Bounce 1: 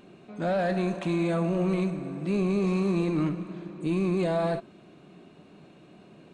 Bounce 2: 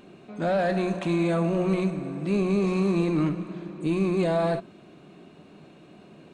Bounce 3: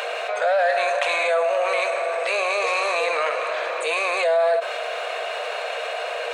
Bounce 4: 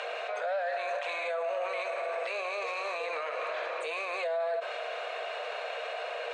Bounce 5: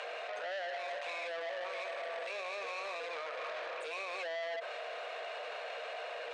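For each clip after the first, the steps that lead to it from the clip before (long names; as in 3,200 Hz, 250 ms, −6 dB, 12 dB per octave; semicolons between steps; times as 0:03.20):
mains-hum notches 60/120/180 Hz; level +2.5 dB
Chebyshev high-pass with heavy ripple 460 Hz, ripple 6 dB; envelope flattener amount 70%; level +6 dB
brickwall limiter −16.5 dBFS, peak gain reduction 7 dB; high-frequency loss of the air 72 metres; level −8 dB
saturating transformer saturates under 1,600 Hz; level −4 dB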